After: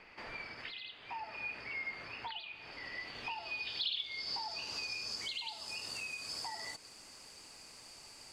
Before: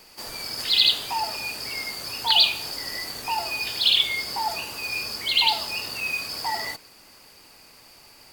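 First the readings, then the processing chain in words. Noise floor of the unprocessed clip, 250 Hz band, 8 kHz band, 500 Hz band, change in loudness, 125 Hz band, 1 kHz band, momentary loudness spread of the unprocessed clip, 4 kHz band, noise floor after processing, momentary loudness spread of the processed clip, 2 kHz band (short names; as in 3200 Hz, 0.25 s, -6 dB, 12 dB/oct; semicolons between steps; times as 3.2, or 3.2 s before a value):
-51 dBFS, -13.0 dB, -14.0 dB, -14.0 dB, -17.0 dB, -13.0 dB, -16.5 dB, 13 LU, -18.5 dB, -56 dBFS, 15 LU, -12.0 dB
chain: compressor 12:1, threshold -35 dBFS, peak gain reduction 22 dB; low-pass sweep 2200 Hz -> 7900 Hz, 2.5–5.57; gain -5.5 dB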